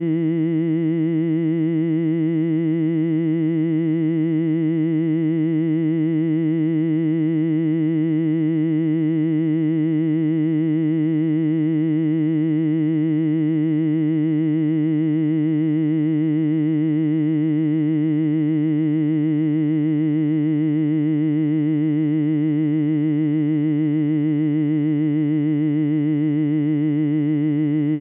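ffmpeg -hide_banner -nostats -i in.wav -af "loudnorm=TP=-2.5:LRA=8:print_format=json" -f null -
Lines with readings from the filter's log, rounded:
"input_i" : "-19.8",
"input_tp" : "-12.0",
"input_lra" : "0.4",
"input_thresh" : "-29.8",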